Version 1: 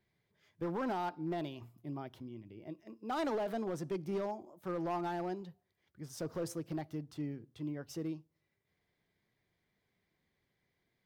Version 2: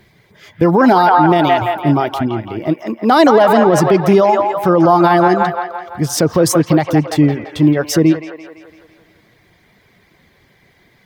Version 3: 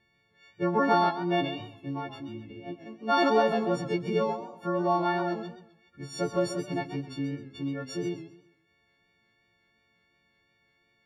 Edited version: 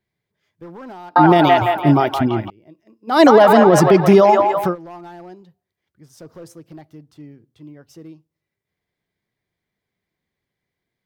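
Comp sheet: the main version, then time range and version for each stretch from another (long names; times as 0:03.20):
1
0:01.16–0:02.50: punch in from 2
0:03.15–0:04.68: punch in from 2, crossfade 0.16 s
not used: 3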